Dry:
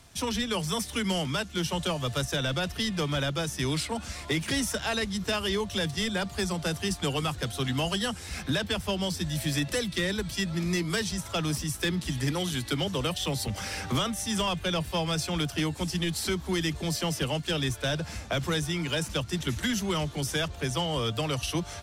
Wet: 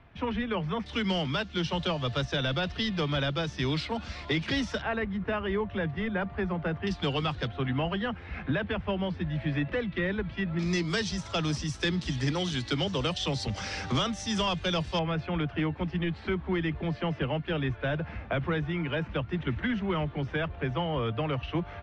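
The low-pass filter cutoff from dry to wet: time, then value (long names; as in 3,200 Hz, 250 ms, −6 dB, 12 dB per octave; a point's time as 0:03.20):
low-pass filter 24 dB per octave
2,500 Hz
from 0:00.86 4,500 Hz
from 0:04.82 2,200 Hz
from 0:06.87 4,200 Hz
from 0:07.47 2,500 Hz
from 0:10.59 5,900 Hz
from 0:14.99 2,500 Hz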